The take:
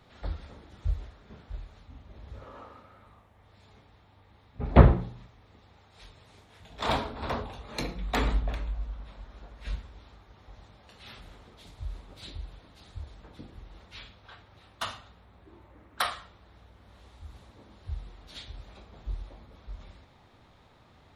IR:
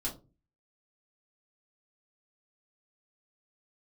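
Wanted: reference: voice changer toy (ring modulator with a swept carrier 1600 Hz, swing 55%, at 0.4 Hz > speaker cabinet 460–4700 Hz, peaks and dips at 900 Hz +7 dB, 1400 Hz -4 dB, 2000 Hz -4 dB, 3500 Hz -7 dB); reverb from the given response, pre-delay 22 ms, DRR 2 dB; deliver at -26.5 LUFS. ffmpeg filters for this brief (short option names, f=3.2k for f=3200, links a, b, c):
-filter_complex "[0:a]asplit=2[a][b];[1:a]atrim=start_sample=2205,adelay=22[c];[b][c]afir=irnorm=-1:irlink=0,volume=-3.5dB[d];[a][d]amix=inputs=2:normalize=0,aeval=exprs='val(0)*sin(2*PI*1600*n/s+1600*0.55/0.4*sin(2*PI*0.4*n/s))':c=same,highpass=460,equalizer=f=900:t=q:w=4:g=7,equalizer=f=1.4k:t=q:w=4:g=-4,equalizer=f=2k:t=q:w=4:g=-4,equalizer=f=3.5k:t=q:w=4:g=-7,lowpass=f=4.7k:w=0.5412,lowpass=f=4.7k:w=1.3066,volume=1.5dB"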